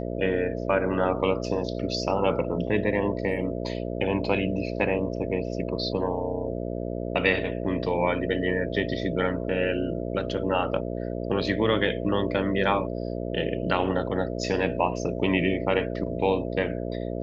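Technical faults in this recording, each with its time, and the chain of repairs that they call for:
buzz 60 Hz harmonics 11 -31 dBFS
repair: de-hum 60 Hz, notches 11

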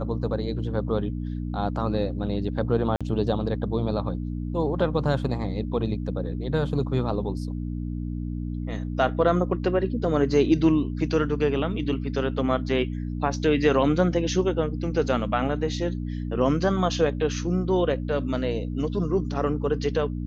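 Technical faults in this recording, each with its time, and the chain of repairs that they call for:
hum 60 Hz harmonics 5 -30 dBFS
2.96–3.01 s: dropout 46 ms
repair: de-hum 60 Hz, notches 5; interpolate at 2.96 s, 46 ms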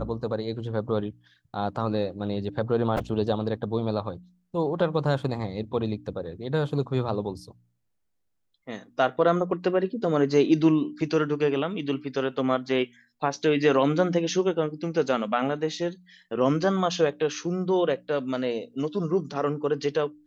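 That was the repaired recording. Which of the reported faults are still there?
nothing left

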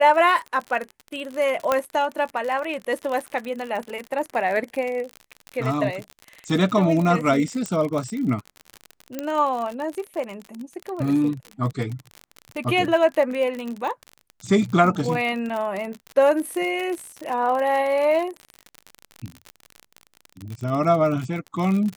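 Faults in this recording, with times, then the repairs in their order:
crackle 52 per s -27 dBFS
1.72 s: pop -7 dBFS
7.66 s: pop -14 dBFS
9.19 s: pop -13 dBFS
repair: de-click

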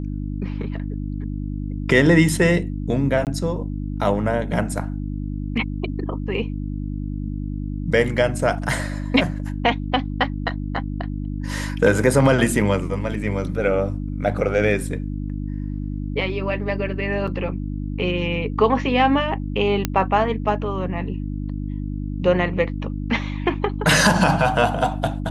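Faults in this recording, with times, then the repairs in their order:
hum 50 Hz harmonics 6 -27 dBFS
3.25–3.27 s: dropout 18 ms
17.27–17.28 s: dropout 5.7 ms
19.85 s: pop -5 dBFS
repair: de-click; de-hum 50 Hz, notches 6; interpolate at 3.25 s, 18 ms; interpolate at 17.27 s, 5.7 ms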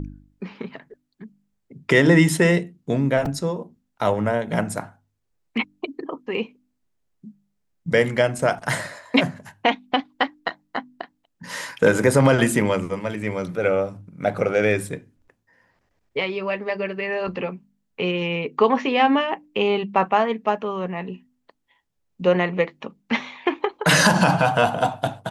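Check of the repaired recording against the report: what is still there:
nothing left

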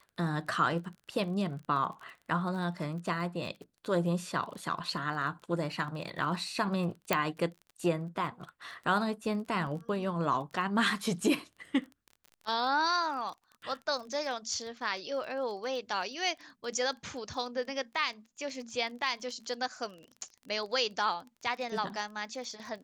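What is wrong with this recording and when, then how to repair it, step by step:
crackle 22 per s -41 dBFS
7.13 s: pop -11 dBFS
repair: de-click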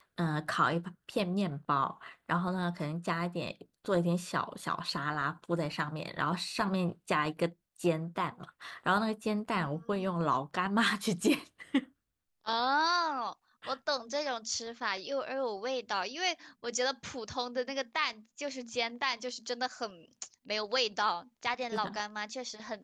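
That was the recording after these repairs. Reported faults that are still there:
nothing left

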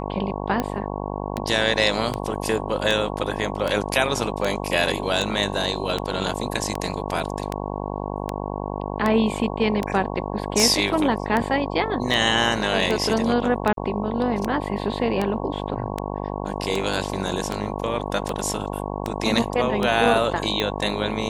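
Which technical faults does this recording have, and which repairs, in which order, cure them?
buzz 50 Hz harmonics 22 -29 dBFS
tick 78 rpm -10 dBFS
13.73–13.77 s: dropout 42 ms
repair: de-click; de-hum 50 Hz, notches 22; interpolate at 13.73 s, 42 ms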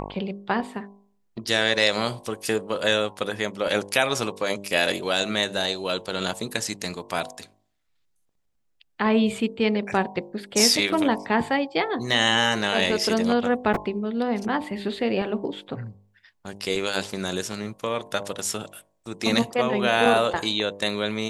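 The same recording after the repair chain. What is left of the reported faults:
nothing left

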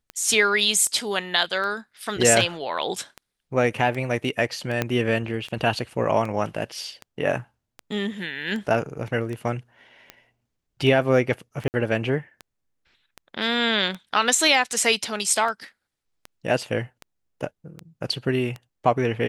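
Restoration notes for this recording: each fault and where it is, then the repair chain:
tick 78 rpm -20 dBFS
4.82 s: pop -8 dBFS
11.68–11.74 s: dropout 59 ms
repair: de-click; interpolate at 11.68 s, 59 ms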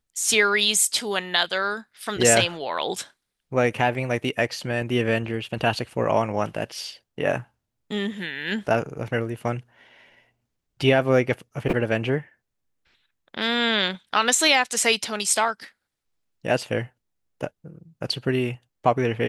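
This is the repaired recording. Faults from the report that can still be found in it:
4.82 s: pop

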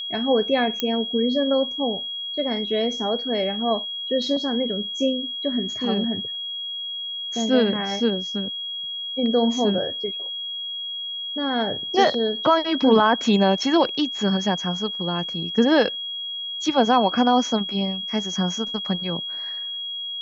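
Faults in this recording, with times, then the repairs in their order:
whine 3.3 kHz -28 dBFS
0.80 s: pop -8 dBFS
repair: de-click; band-stop 3.3 kHz, Q 30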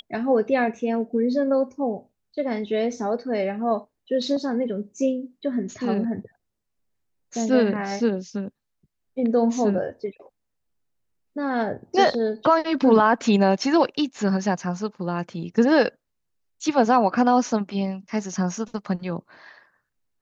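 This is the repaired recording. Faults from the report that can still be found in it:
0.80 s: pop

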